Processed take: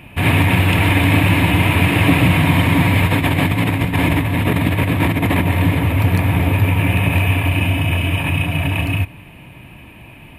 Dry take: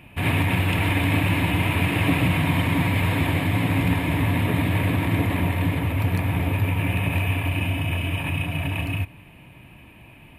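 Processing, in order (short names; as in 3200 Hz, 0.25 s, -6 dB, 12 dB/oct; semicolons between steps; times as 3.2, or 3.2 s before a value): 3.05–5.47 negative-ratio compressor -23 dBFS, ratio -0.5; gain +7.5 dB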